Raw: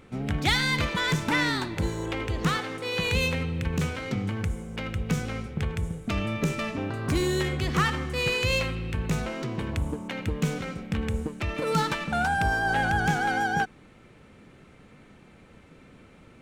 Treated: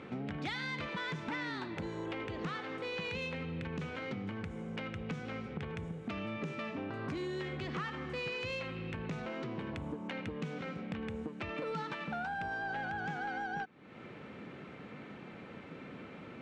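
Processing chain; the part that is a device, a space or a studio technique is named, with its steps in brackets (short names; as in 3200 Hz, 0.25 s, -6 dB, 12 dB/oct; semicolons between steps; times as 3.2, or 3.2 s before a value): AM radio (BPF 150–3400 Hz; compressor 4:1, threshold -44 dBFS, peak gain reduction 19.5 dB; soft clip -34 dBFS, distortion -22 dB); gain +5.5 dB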